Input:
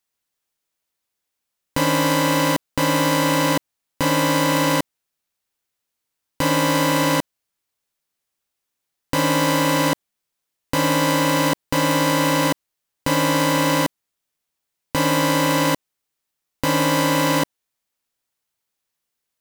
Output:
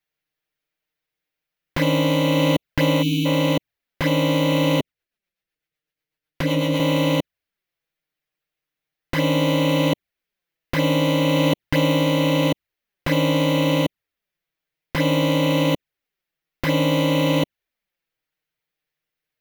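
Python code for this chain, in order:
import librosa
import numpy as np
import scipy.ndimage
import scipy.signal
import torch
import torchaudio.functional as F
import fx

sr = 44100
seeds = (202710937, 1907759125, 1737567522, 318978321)

y = fx.graphic_eq(x, sr, hz=(250, 1000, 2000, 8000), db=(-4, -8, 4, -11))
y = fx.rider(y, sr, range_db=10, speed_s=0.5)
y = fx.high_shelf(y, sr, hz=3400.0, db=-7.0)
y = fx.env_flanger(y, sr, rest_ms=6.5, full_db=-20.5)
y = fx.spec_erase(y, sr, start_s=3.03, length_s=0.23, low_hz=470.0, high_hz=2200.0)
y = fx.rotary(y, sr, hz=8.0, at=(4.8, 6.8))
y = F.gain(torch.from_numpy(y), 6.0).numpy()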